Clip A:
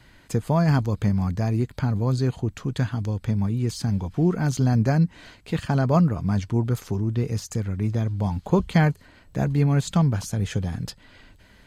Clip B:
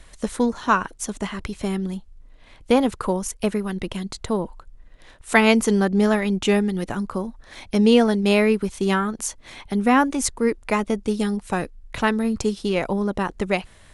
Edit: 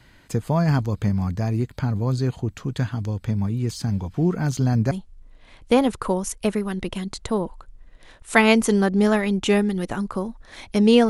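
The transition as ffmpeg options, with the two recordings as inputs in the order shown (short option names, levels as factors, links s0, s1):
-filter_complex "[0:a]apad=whole_dur=11.09,atrim=end=11.09,atrim=end=4.912[s0];[1:a]atrim=start=1.898:end=8.08[s1];[s0][s1]acrossfade=d=0.004:c1=hsin:c2=hsin"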